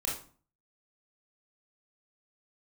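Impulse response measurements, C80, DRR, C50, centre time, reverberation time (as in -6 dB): 10.5 dB, -4.0 dB, 4.5 dB, 36 ms, 0.45 s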